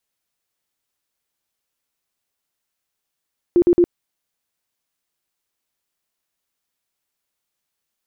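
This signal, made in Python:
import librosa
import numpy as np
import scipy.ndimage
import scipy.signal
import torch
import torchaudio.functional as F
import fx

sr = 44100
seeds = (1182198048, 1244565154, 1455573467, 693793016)

y = fx.tone_burst(sr, hz=349.0, cycles=21, every_s=0.11, bursts=3, level_db=-9.5)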